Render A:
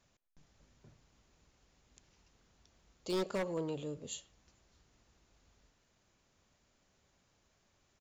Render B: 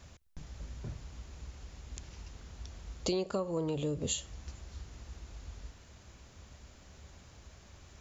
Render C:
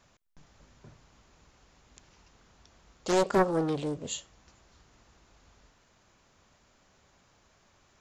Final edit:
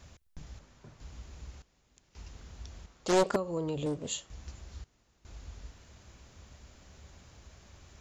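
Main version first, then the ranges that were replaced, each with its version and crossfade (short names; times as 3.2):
B
0.59–1 from C
1.62–2.15 from A
2.86–3.36 from C
3.86–4.3 from C
4.84–5.25 from A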